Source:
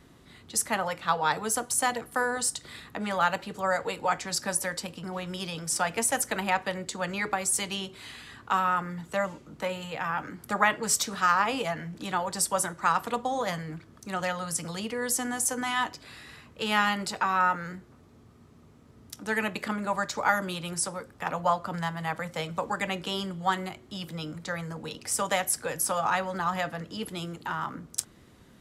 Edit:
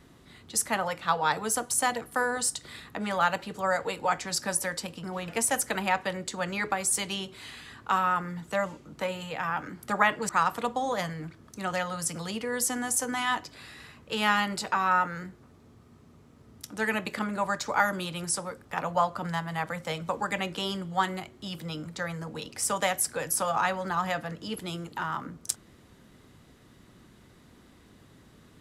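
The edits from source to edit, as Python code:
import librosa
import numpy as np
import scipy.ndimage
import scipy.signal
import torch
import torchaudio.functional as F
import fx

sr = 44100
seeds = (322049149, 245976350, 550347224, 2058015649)

y = fx.edit(x, sr, fx.cut(start_s=5.28, length_s=0.61),
    fx.cut(start_s=10.9, length_s=1.88), tone=tone)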